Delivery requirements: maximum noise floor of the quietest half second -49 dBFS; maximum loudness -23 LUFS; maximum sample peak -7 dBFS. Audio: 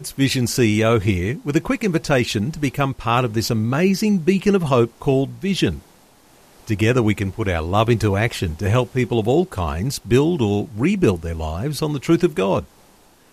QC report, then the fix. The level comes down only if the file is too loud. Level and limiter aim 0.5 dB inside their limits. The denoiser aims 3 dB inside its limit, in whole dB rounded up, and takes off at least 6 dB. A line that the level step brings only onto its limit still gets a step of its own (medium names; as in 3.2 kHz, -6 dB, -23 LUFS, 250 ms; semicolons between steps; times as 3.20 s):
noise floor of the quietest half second -52 dBFS: pass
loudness -19.5 LUFS: fail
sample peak -4.0 dBFS: fail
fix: trim -4 dB